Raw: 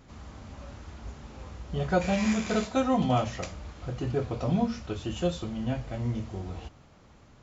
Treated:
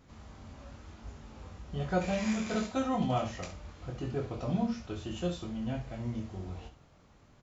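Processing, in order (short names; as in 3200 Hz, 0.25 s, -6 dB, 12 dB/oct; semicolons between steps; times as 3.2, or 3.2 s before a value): early reflections 22 ms -6.5 dB, 68 ms -11 dB; gain -6 dB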